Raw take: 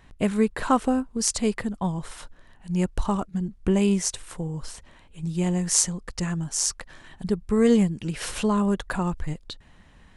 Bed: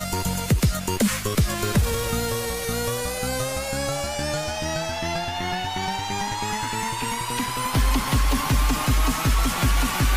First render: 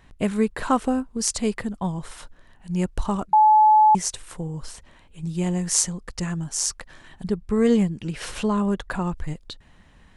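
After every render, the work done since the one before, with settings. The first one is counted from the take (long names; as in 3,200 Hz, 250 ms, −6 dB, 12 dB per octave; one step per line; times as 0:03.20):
0:03.33–0:03.95: beep over 859 Hz −11 dBFS
0:07.27–0:09.15: high-shelf EQ 8,900 Hz −8.5 dB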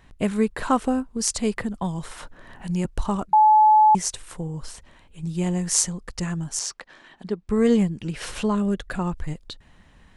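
0:01.57–0:02.85: multiband upward and downward compressor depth 70%
0:06.59–0:07.49: three-way crossover with the lows and the highs turned down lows −20 dB, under 200 Hz, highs −13 dB, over 6,100 Hz
0:08.55–0:08.99: parametric band 950 Hz −14 dB 0.51 octaves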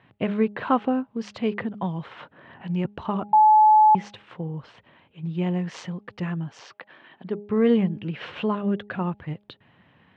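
elliptic band-pass filter 110–3,100 Hz, stop band 60 dB
hum removal 205.8 Hz, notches 4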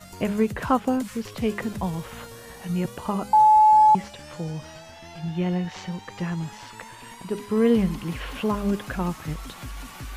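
mix in bed −16.5 dB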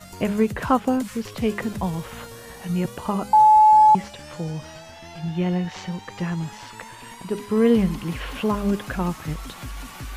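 level +2 dB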